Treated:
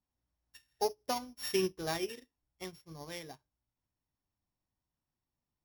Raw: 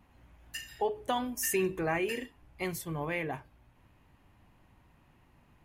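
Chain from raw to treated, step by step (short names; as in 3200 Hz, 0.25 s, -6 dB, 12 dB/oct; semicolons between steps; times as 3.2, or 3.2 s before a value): sample sorter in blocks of 8 samples; upward expander 2.5:1, over -45 dBFS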